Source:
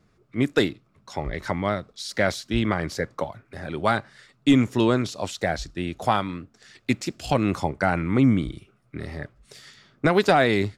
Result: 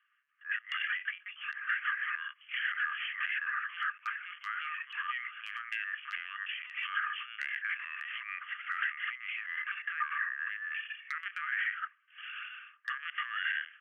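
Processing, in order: tilt EQ +4.5 dB/octave; in parallel at -11 dB: saturation -10.5 dBFS, distortion -17 dB; on the sum: ever faster or slower copies 217 ms, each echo +3 st, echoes 3, each echo -6 dB; gain riding within 4 dB 0.5 s; dynamic bell 2.5 kHz, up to +5 dB, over -39 dBFS, Q 3.8; LPC vocoder at 8 kHz pitch kept; peak limiter -13.5 dBFS, peak gain reduction 11.5 dB; compression 2:1, threshold -28 dBFS, peak gain reduction 5.5 dB; hard clipper -17 dBFS, distortion -37 dB; rippled Chebyshev high-pass 1.5 kHz, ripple 6 dB; tape speed -22%

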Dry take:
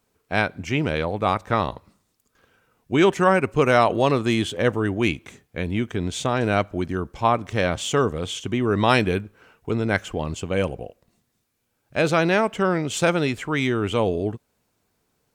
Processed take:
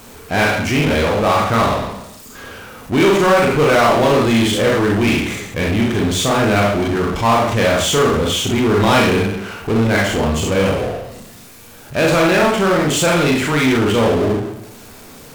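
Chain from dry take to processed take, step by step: Schroeder reverb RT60 0.5 s, combs from 27 ms, DRR -2 dB; power-law waveshaper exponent 0.5; trim -4.5 dB

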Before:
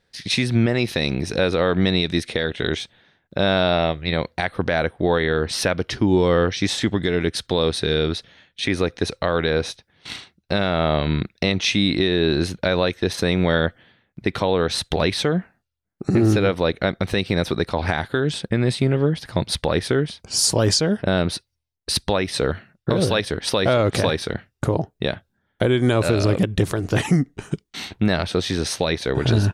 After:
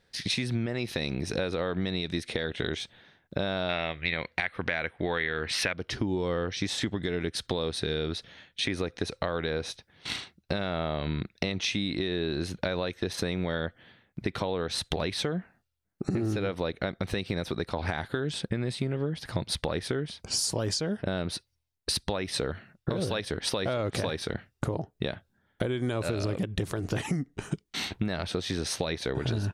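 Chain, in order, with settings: 3.69–5.73 s: peaking EQ 2.2 kHz +14 dB 1.3 oct; compression 6:1, threshold -27 dBFS, peak gain reduction 17.5 dB

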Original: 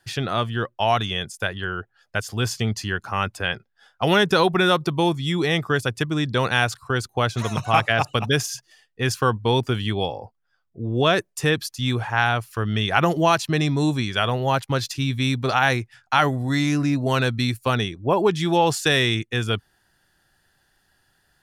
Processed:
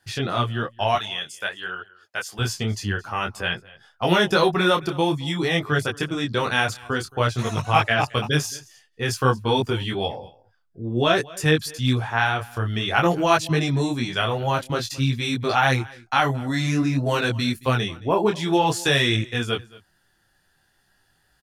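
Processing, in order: 0.95–2.39 s: high-pass 850 Hz 6 dB/octave; delay 222 ms -22 dB; detune thickener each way 18 cents; trim +3 dB

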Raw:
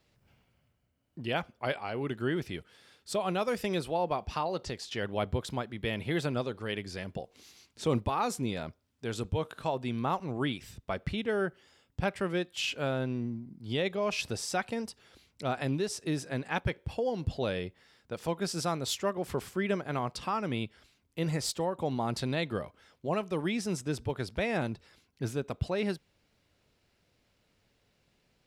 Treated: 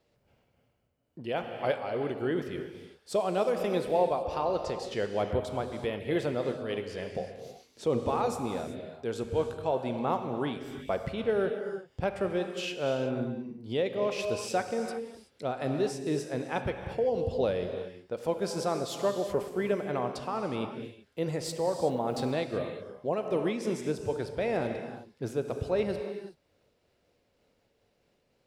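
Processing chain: peaking EQ 500 Hz +9.5 dB 1.6 oct; gated-style reverb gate 400 ms flat, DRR 5.5 dB; 21.89–22.31 s: small samples zeroed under -47 dBFS; random flutter of the level, depth 50%; trim -2 dB

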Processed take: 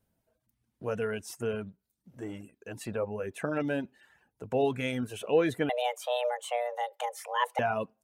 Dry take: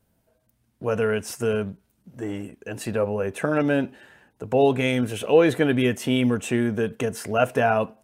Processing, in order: reverb removal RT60 0.59 s; 5.69–7.59 s: frequency shift +360 Hz; trim -8 dB

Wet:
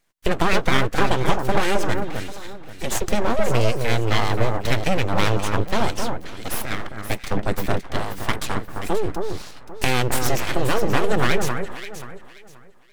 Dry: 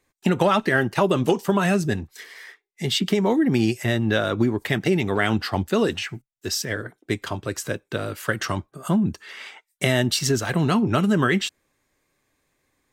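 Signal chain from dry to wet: 7.31–7.84 s: bass shelf 280 Hz +12 dB; full-wave rectifier; echo whose repeats swap between lows and highs 265 ms, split 1.7 kHz, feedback 51%, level -4.5 dB; trim +2 dB

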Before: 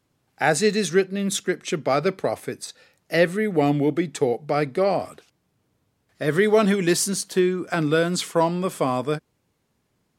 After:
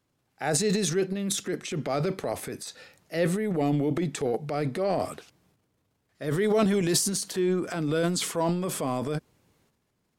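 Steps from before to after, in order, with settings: dynamic bell 1.8 kHz, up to -5 dB, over -34 dBFS, Q 0.71; transient shaper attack -4 dB, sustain +10 dB; trim -5 dB

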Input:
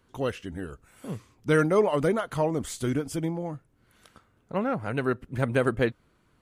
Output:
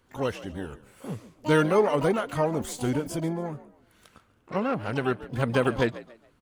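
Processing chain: frequency-shifting echo 140 ms, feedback 31%, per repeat +55 Hz, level -17 dB; harmony voices +12 st -11 dB

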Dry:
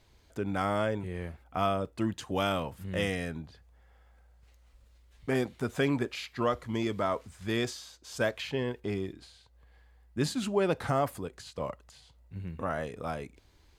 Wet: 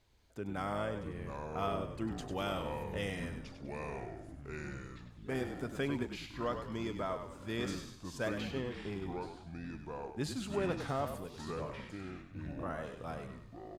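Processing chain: ever faster or slower copies 534 ms, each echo -5 st, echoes 3, each echo -6 dB; frequency-shifting echo 99 ms, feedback 42%, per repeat -40 Hz, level -8 dB; trim -8 dB

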